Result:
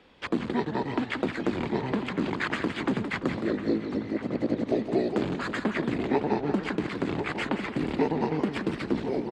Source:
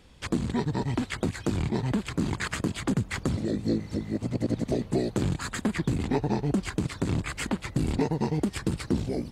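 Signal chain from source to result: three-band isolator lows -17 dB, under 220 Hz, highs -21 dB, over 3900 Hz; outdoor echo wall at 180 m, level -9 dB; warbling echo 0.17 s, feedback 42%, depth 170 cents, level -9 dB; gain +3 dB

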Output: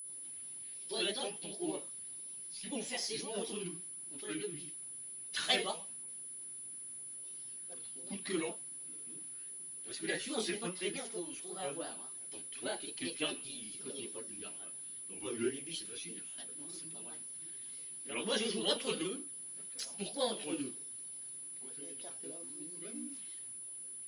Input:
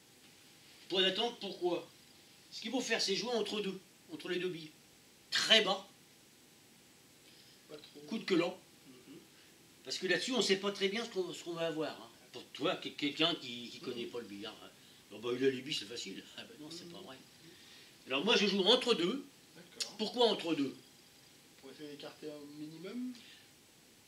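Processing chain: bin magnitudes rounded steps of 15 dB; grains 0.163 s, grains 20/s, spray 25 ms, pitch spread up and down by 3 st; whine 10000 Hz -43 dBFS; gain -1 dB

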